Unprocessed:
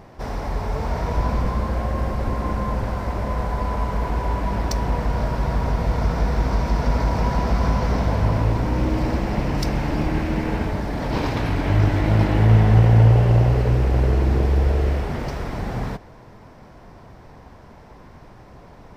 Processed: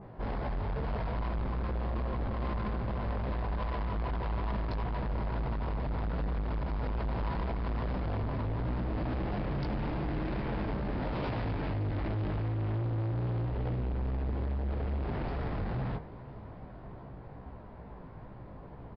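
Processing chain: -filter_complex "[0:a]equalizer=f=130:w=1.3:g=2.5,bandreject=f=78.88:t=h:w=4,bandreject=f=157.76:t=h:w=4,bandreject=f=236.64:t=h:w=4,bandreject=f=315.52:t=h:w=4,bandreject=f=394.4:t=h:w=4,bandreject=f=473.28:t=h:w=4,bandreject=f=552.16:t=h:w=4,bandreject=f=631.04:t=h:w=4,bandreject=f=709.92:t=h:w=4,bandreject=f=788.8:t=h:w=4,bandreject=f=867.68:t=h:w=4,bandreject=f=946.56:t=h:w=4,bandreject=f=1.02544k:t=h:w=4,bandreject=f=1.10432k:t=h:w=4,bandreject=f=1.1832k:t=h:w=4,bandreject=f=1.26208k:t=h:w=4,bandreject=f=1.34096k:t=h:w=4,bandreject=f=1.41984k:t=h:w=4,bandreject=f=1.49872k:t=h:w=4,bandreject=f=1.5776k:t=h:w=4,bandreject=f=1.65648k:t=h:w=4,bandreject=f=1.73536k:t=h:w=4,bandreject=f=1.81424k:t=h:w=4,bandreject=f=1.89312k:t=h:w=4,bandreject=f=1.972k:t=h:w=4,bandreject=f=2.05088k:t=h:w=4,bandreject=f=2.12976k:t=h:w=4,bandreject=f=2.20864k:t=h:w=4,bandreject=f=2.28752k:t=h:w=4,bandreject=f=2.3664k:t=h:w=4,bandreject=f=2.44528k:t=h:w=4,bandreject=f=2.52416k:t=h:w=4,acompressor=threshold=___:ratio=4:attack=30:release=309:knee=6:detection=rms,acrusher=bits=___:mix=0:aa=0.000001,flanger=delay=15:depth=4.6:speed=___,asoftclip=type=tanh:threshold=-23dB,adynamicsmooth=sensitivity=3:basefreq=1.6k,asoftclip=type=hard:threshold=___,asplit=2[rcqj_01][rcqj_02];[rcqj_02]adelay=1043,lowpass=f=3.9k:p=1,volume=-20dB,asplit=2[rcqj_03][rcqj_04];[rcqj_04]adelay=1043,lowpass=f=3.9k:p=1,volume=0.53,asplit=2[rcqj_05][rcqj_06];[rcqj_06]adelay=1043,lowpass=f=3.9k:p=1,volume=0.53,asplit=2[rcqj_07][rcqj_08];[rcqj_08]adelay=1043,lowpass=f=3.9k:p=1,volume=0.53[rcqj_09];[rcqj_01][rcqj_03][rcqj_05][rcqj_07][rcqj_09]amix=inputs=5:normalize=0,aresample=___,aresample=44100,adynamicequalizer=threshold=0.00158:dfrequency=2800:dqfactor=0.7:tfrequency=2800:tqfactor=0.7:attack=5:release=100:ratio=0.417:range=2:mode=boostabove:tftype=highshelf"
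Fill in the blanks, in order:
-21dB, 8, 2.4, -30.5dB, 11025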